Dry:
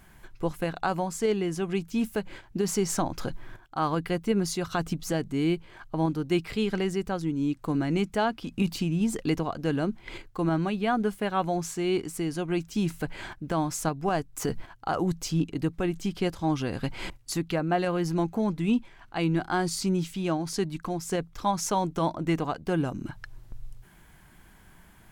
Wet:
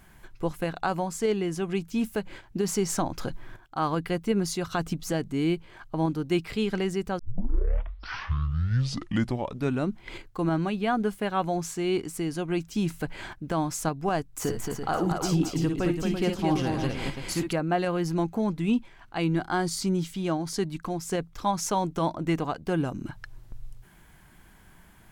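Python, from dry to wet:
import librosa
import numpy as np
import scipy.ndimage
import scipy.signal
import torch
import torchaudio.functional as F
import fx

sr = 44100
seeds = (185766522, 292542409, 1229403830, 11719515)

y = fx.echo_multitap(x, sr, ms=(52, 61, 224, 336, 560), db=(-8.5, -9.5, -4.5, -8.0, -16.5), at=(14.35, 17.53))
y = fx.notch(y, sr, hz=2600.0, q=12.0, at=(19.29, 20.63))
y = fx.edit(y, sr, fx.tape_start(start_s=7.19, length_s=2.81), tone=tone)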